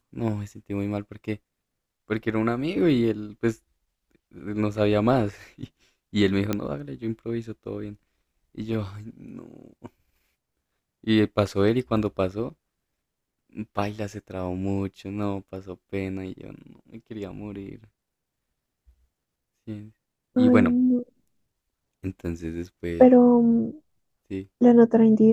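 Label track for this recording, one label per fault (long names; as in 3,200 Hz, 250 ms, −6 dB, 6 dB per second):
6.530000	6.530000	click −11 dBFS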